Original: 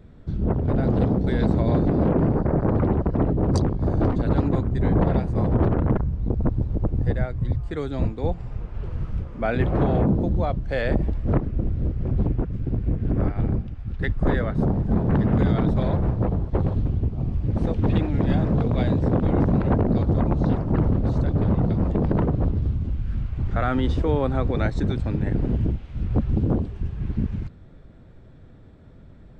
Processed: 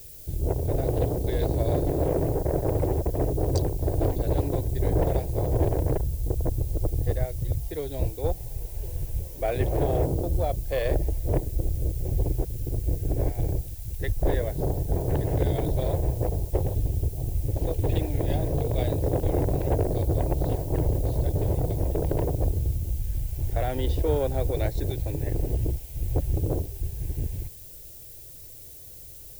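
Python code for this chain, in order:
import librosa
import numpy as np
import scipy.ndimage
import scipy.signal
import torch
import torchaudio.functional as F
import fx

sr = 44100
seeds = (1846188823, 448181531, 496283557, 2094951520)

y = fx.fixed_phaser(x, sr, hz=520.0, stages=4)
y = fx.cheby_harmonics(y, sr, harmonics=(6, 7), levels_db=(-32, -32), full_scale_db=-10.5)
y = fx.dmg_noise_colour(y, sr, seeds[0], colour='violet', level_db=-45.0)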